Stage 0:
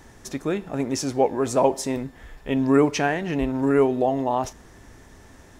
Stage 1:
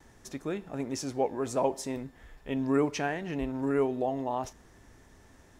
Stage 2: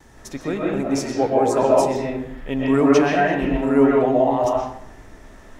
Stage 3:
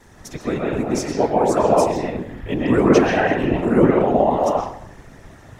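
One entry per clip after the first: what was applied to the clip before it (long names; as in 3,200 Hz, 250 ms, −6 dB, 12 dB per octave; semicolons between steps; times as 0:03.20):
noise gate with hold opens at −42 dBFS; level −8.5 dB
convolution reverb RT60 0.65 s, pre-delay 90 ms, DRR −4.5 dB; level +7 dB
random phases in short frames; level +1 dB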